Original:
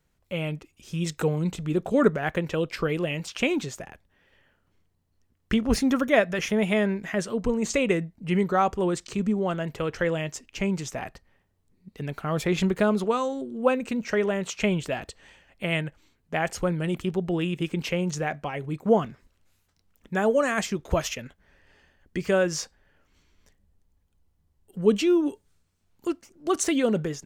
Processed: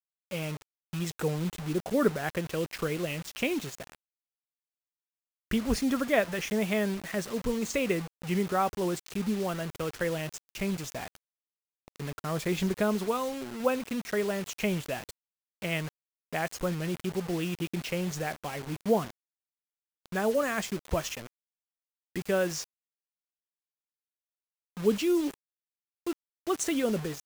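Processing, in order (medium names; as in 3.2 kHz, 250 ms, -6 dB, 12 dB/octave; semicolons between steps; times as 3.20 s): bit crusher 6-bit; trim -5 dB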